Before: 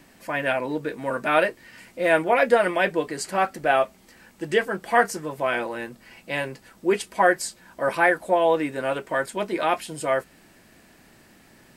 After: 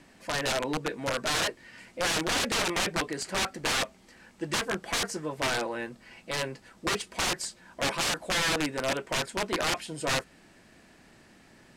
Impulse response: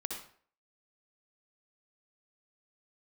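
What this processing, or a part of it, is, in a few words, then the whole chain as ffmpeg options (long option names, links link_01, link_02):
overflowing digital effects unit: -af "aeval=exprs='(mod(8.91*val(0)+1,2)-1)/8.91':channel_layout=same,lowpass=8400,volume=-2.5dB"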